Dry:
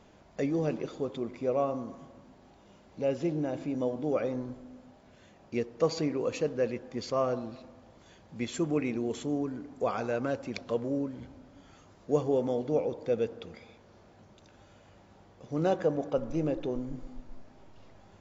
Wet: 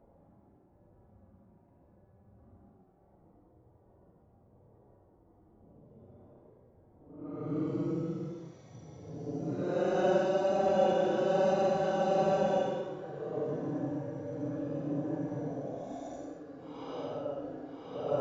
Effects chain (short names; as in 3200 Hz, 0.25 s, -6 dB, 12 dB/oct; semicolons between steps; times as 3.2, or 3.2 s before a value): grains 0.1 s, grains 20/s, spray 0.1 s, pitch spread up and down by 0 st; low-pass opened by the level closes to 580 Hz, open at -29.5 dBFS; Paulstretch 15×, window 0.05 s, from 14.98; gain -2 dB